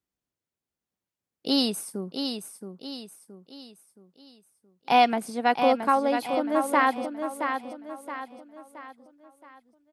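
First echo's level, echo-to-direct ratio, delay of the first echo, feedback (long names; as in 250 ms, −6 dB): −7.0 dB, −6.0 dB, 672 ms, 42%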